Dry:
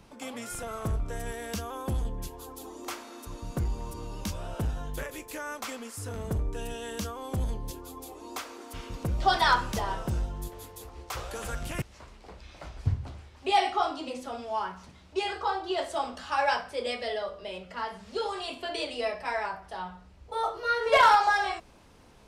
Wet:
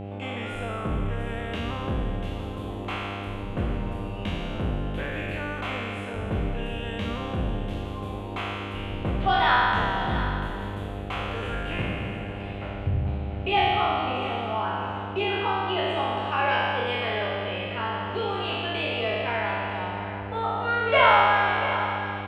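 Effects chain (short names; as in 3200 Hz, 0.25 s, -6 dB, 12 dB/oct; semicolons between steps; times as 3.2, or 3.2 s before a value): spectral trails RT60 2.10 s; resonant high shelf 3900 Hz -11 dB, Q 3; in parallel at 0 dB: compressor, threshold -30 dBFS, peak gain reduction 19 dB; on the sum: air absorption 63 m; echo 0.691 s -12 dB; buzz 100 Hz, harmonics 8, -31 dBFS -4 dB/oct; gain -5 dB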